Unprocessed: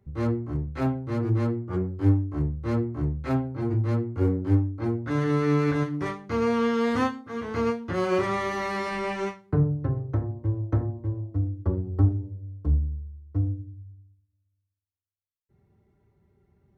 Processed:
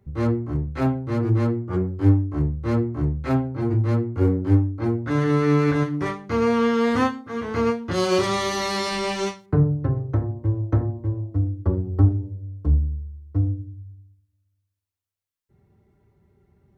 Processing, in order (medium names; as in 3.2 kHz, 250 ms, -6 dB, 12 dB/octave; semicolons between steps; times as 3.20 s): 7.91–9.46 s: resonant high shelf 2.8 kHz +9 dB, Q 1.5; trim +4 dB